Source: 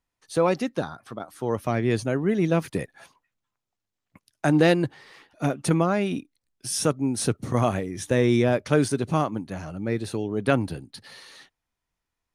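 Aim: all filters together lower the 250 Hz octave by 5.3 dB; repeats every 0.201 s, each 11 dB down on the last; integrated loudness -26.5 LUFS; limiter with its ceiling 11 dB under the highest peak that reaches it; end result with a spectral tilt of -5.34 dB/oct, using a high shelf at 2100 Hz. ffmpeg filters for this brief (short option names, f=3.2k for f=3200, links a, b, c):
-af "equalizer=f=250:t=o:g=-7.5,highshelf=f=2.1k:g=-4,alimiter=limit=-20.5dB:level=0:latency=1,aecho=1:1:201|402|603:0.282|0.0789|0.0221,volume=6dB"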